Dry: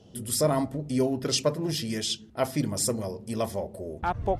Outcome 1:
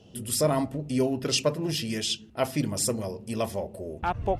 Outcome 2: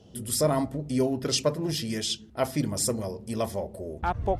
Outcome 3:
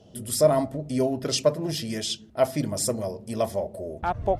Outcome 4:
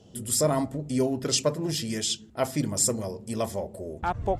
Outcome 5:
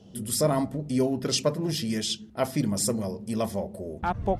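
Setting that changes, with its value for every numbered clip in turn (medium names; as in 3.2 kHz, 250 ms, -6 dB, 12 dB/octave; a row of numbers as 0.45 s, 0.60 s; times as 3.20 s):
peaking EQ, frequency: 2.7 kHz, 64 Hz, 630 Hz, 7.4 kHz, 200 Hz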